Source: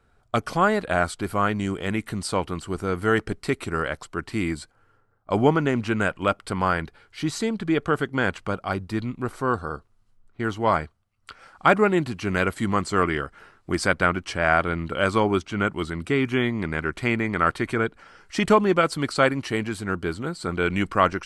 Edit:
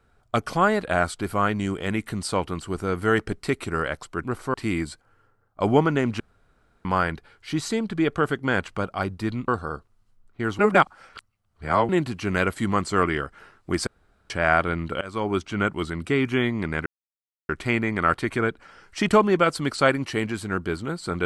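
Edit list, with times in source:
0:05.90–0:06.55: fill with room tone
0:09.18–0:09.48: move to 0:04.24
0:10.59–0:11.89: reverse
0:13.87–0:14.30: fill with room tone
0:15.01–0:15.45: fade in, from −23 dB
0:16.86: splice in silence 0.63 s

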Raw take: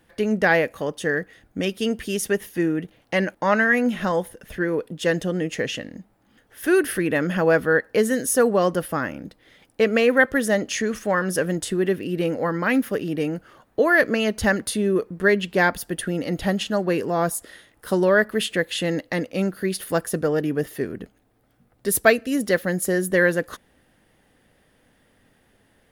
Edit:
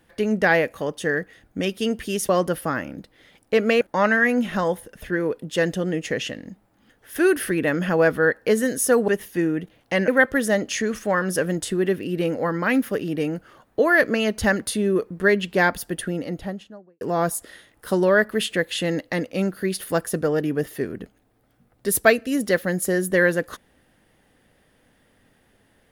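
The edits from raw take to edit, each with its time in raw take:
0:02.29–0:03.29: swap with 0:08.56–0:10.08
0:15.86–0:17.01: fade out and dull

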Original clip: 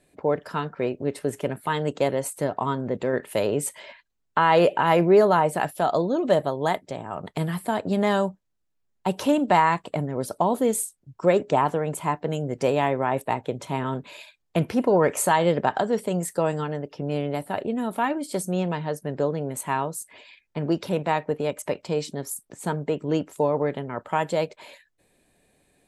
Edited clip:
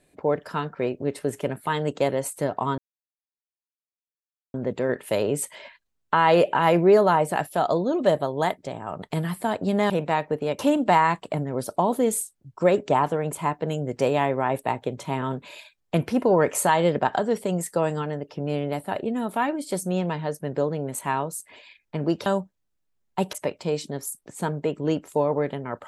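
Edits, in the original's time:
0:02.78: splice in silence 1.76 s
0:08.14–0:09.21: swap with 0:20.88–0:21.57

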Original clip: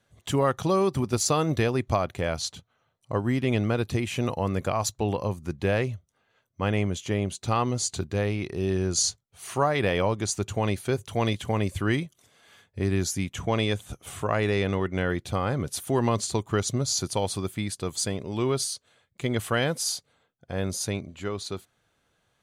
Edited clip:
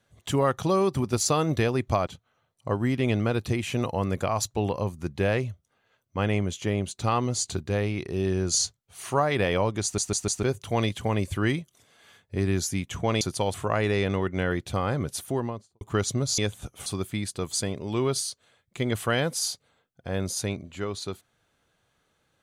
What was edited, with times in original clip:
0:02.07–0:02.51: remove
0:10.27: stutter in place 0.15 s, 4 plays
0:13.65–0:14.13: swap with 0:16.97–0:17.30
0:15.68–0:16.40: fade out and dull

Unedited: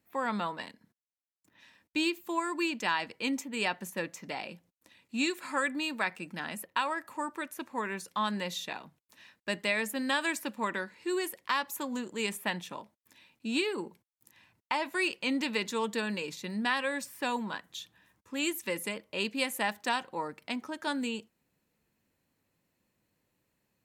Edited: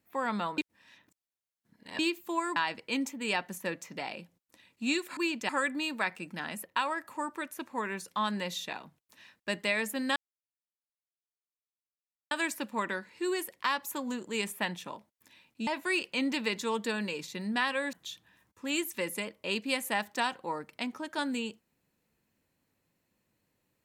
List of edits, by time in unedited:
0:00.58–0:01.99: reverse
0:02.56–0:02.88: move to 0:05.49
0:10.16: splice in silence 2.15 s
0:13.52–0:14.76: remove
0:17.02–0:17.62: remove

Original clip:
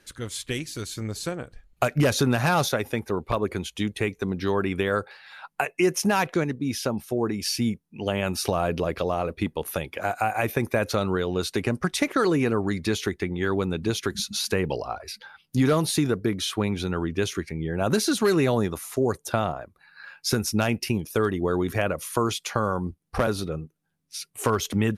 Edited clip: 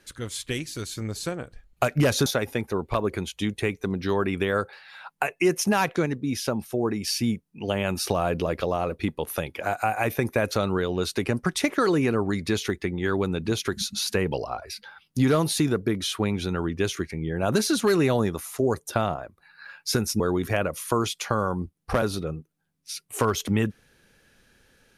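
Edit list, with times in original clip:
0:02.26–0:02.64: remove
0:20.58–0:21.45: remove

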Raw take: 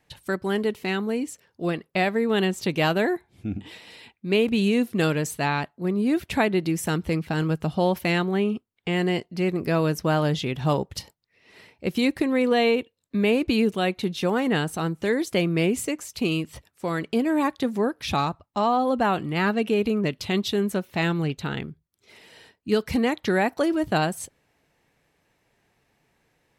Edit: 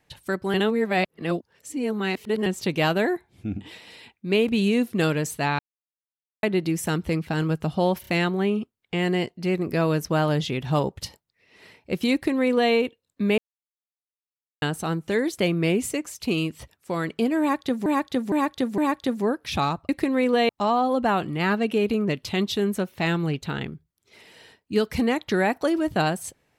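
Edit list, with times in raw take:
0:00.54–0:02.46: reverse
0:05.59–0:06.43: silence
0:08.01: stutter 0.03 s, 3 plays
0:12.07–0:12.67: duplicate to 0:18.45
0:13.32–0:14.56: silence
0:17.34–0:17.80: repeat, 4 plays

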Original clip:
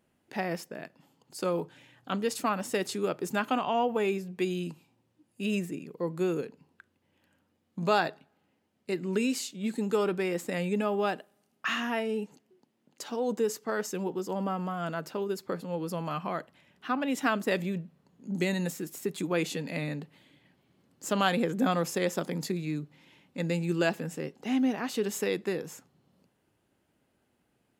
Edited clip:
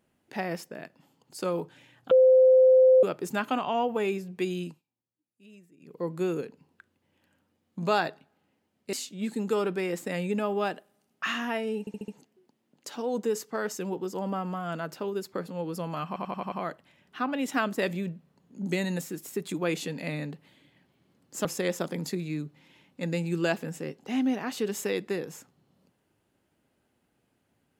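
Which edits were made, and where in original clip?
0:02.11–0:03.03: beep over 517 Hz −14 dBFS
0:04.63–0:05.97: duck −23 dB, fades 0.19 s
0:08.93–0:09.35: remove
0:12.22: stutter 0.07 s, 5 plays
0:16.21: stutter 0.09 s, 6 plays
0:21.14–0:21.82: remove

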